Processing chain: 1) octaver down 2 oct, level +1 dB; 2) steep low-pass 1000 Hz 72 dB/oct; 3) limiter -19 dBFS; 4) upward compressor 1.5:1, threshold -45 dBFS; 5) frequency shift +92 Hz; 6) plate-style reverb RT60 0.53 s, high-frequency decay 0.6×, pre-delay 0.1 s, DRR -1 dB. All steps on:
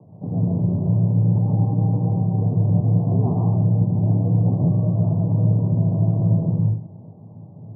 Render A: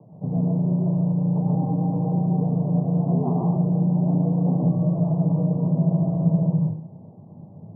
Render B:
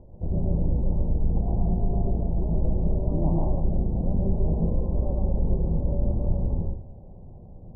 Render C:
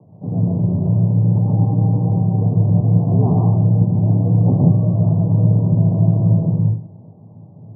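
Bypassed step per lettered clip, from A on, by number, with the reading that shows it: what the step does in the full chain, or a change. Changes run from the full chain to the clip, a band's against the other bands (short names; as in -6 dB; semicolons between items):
1, 125 Hz band -5.5 dB; 5, 500 Hz band +6.5 dB; 3, mean gain reduction 3.0 dB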